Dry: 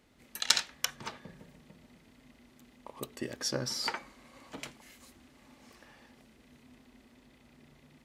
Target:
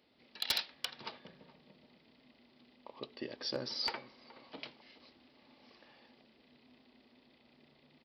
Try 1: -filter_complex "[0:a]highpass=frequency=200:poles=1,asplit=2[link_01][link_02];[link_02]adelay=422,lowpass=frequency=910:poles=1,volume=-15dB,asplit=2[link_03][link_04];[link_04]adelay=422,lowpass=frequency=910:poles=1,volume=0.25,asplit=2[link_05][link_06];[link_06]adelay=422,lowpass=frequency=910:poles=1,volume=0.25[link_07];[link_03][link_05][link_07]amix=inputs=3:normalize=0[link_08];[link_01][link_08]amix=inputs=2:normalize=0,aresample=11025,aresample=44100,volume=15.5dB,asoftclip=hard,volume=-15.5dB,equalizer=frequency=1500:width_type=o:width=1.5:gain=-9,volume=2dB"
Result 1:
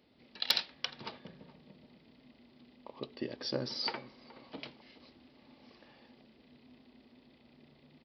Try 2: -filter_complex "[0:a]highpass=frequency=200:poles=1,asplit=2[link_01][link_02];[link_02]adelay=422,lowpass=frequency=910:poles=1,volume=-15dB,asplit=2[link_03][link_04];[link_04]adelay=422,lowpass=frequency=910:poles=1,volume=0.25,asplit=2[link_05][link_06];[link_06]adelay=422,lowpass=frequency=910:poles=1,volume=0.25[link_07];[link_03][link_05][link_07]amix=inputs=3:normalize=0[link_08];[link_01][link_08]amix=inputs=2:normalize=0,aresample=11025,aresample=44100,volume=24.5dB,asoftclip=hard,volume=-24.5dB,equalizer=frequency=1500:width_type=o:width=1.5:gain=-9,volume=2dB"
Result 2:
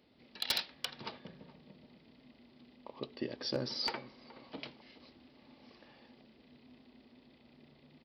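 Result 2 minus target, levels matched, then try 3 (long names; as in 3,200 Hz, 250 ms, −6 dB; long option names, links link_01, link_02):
250 Hz band +4.5 dB
-filter_complex "[0:a]highpass=frequency=550:poles=1,asplit=2[link_01][link_02];[link_02]adelay=422,lowpass=frequency=910:poles=1,volume=-15dB,asplit=2[link_03][link_04];[link_04]adelay=422,lowpass=frequency=910:poles=1,volume=0.25,asplit=2[link_05][link_06];[link_06]adelay=422,lowpass=frequency=910:poles=1,volume=0.25[link_07];[link_03][link_05][link_07]amix=inputs=3:normalize=0[link_08];[link_01][link_08]amix=inputs=2:normalize=0,aresample=11025,aresample=44100,volume=24.5dB,asoftclip=hard,volume=-24.5dB,equalizer=frequency=1500:width_type=o:width=1.5:gain=-9,volume=2dB"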